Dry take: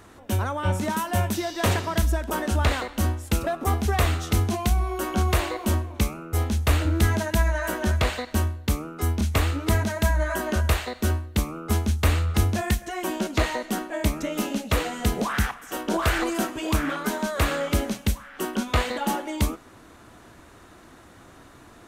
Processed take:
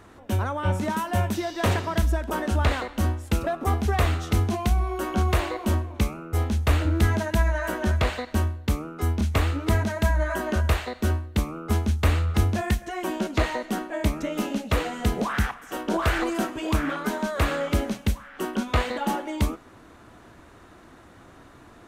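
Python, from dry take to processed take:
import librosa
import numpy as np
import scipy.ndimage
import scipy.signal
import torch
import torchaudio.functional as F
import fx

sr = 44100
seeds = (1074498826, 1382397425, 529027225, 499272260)

y = fx.high_shelf(x, sr, hz=4300.0, db=-7.0)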